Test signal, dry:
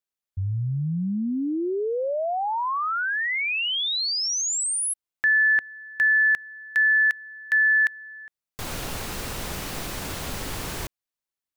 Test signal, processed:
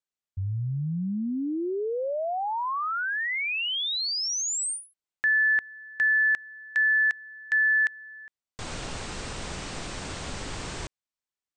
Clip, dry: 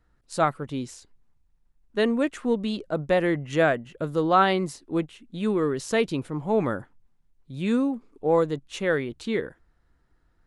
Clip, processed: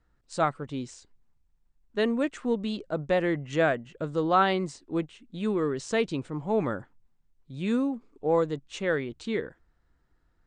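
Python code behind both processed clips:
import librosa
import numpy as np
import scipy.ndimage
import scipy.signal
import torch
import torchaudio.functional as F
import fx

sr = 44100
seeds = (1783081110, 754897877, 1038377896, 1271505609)

y = scipy.signal.sosfilt(scipy.signal.butter(16, 8900.0, 'lowpass', fs=sr, output='sos'), x)
y = y * librosa.db_to_amplitude(-3.0)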